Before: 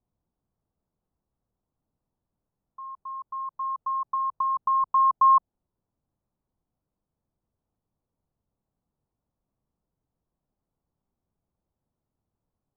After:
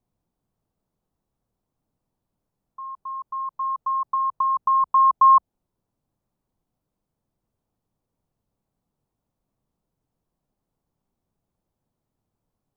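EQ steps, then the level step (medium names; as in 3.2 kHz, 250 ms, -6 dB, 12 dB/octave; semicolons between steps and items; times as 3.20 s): peaking EQ 66 Hz -6.5 dB 0.53 oct; +4.0 dB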